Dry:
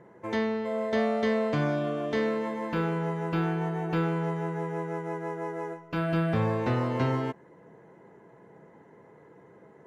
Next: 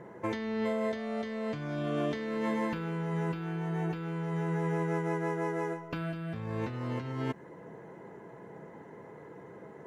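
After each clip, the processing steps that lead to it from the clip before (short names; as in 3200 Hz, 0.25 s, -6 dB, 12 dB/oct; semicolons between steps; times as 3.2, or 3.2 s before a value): dynamic EQ 690 Hz, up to -6 dB, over -40 dBFS, Q 0.73; negative-ratio compressor -35 dBFS, ratio -1; gain +1.5 dB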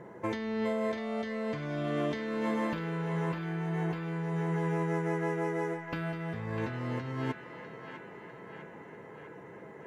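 narrowing echo 0.65 s, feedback 71%, band-pass 1900 Hz, level -6 dB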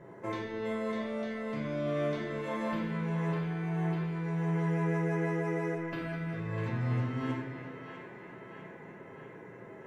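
reverb RT60 0.90 s, pre-delay 5 ms, DRR -4.5 dB; gain -6.5 dB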